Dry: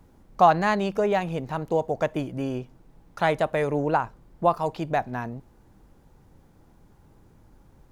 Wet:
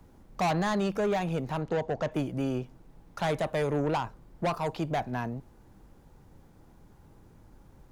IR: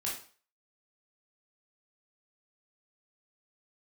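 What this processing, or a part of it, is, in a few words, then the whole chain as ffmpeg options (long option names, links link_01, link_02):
one-band saturation: -filter_complex "[0:a]asettb=1/sr,asplit=3[link_01][link_02][link_03];[link_01]atrim=end=1.614[link_04];[link_02]atrim=start=1.61:end=2.12,asetpts=PTS-STARTPTS,afade=type=in:duration=0.004:curve=qsin,afade=type=out:start_time=0.506:duration=0.004:curve=qsin,lowpass=5600[link_05];[link_03]atrim=start=2.116[link_06];[link_04][link_05]acrossfade=duration=0.004:curve1=hsin:curve2=qsin[link_07];[link_07][link_06]acrossfade=duration=0.004:curve1=qsin:curve2=hsin,acrossover=split=210|4200[link_08][link_09][link_10];[link_09]asoftclip=type=tanh:threshold=-25dB[link_11];[link_08][link_11][link_10]amix=inputs=3:normalize=0"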